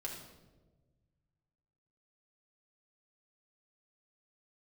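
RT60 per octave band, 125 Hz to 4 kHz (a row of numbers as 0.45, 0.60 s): 2.5, 1.8, 1.5, 1.0, 0.80, 0.75 s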